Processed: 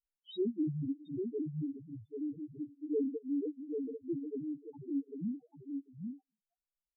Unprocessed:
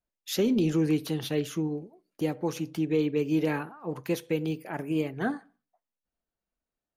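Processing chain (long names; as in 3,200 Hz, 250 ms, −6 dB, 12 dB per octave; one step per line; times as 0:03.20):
pitch shifter swept by a sawtooth −2.5 semitones, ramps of 314 ms
gate pattern "xx.xxx.xx" 180 BPM −24 dB
on a send: single-tap delay 792 ms −5 dB
on the sum: spectral peaks only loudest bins 1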